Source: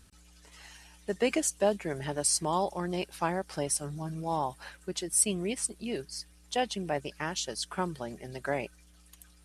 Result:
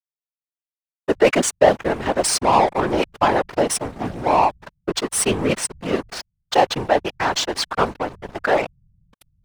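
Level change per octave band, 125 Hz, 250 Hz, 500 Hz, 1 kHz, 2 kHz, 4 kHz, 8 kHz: +8.0, +10.0, +13.5, +15.0, +13.0, +11.5, +5.5 dB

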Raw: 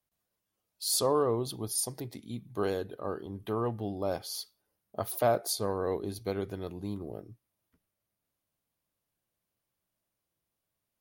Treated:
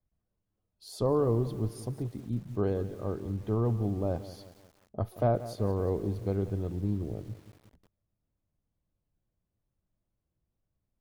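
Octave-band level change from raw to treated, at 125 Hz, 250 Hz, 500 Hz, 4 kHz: +9.0, +4.0, 0.0, -14.0 dB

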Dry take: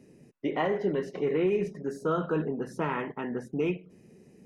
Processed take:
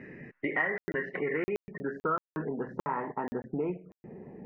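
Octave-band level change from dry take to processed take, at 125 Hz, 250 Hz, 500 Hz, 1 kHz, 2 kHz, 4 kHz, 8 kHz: -6.0 dB, -5.0 dB, -5.5 dB, 0.0 dB, +5.5 dB, under -10 dB, n/a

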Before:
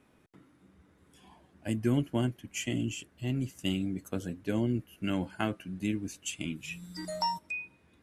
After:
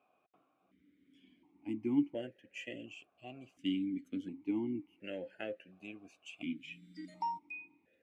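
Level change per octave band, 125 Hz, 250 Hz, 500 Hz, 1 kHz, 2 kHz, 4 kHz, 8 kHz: -18.5 dB, -5.0 dB, -7.0 dB, -6.0 dB, -8.5 dB, -10.5 dB, under -20 dB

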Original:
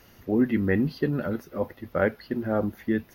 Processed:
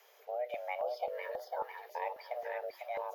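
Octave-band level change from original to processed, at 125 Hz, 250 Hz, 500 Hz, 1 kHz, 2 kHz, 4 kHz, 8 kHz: under -40 dB, under -40 dB, -9.5 dB, -1.0 dB, -11.5 dB, -7.0 dB, n/a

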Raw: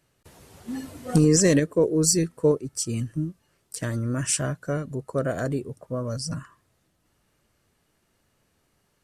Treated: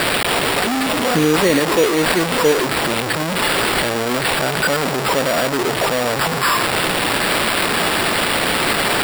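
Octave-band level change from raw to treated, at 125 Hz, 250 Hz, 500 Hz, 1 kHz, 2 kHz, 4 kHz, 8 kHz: +0.5, +5.5, +8.5, +22.5, +21.5, +18.5, +4.5 dB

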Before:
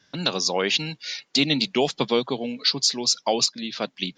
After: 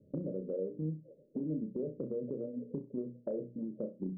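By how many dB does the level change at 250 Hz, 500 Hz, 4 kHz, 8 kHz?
-9.5 dB, -11.5 dB, under -40 dB, under -40 dB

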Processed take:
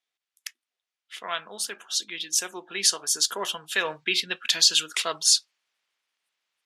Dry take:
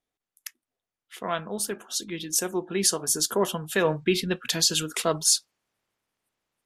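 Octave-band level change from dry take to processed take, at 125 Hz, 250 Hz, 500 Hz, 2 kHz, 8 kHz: -18.0, -13.5, -9.0, +3.5, +0.5 dB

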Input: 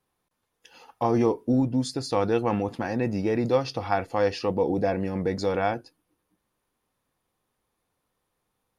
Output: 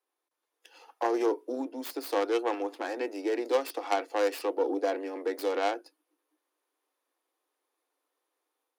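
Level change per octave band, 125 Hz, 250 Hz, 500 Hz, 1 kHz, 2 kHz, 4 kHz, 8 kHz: under -40 dB, -8.5 dB, -3.5 dB, -3.5 dB, -2.5 dB, -3.5 dB, -3.0 dB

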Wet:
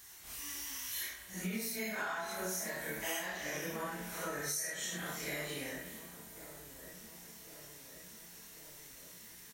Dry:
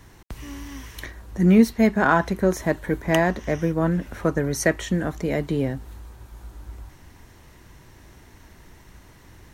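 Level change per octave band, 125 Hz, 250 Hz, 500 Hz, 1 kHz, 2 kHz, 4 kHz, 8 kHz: -23.5, -23.5, -19.5, -16.5, -11.5, -4.5, -2.0 dB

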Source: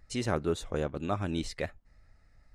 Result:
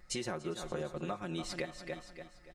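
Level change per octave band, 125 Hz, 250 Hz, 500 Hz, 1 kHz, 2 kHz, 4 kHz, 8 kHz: -9.0, -6.5, -6.0, -5.5, -3.0, -1.5, +0.5 dB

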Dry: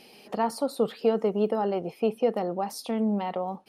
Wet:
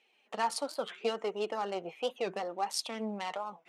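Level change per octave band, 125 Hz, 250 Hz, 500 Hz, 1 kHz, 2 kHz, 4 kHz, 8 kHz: -15.0 dB, -14.0 dB, -9.0 dB, -4.0 dB, +1.5 dB, +3.0 dB, n/a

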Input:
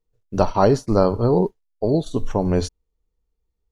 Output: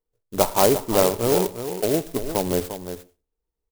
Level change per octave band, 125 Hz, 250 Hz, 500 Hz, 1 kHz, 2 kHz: -8.5, -4.5, -1.0, -1.0, +4.5 dB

